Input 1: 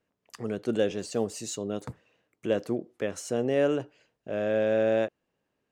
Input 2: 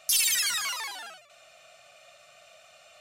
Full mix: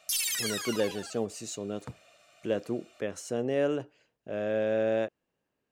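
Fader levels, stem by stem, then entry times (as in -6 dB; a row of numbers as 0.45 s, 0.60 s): -3.0 dB, -6.0 dB; 0.00 s, 0.00 s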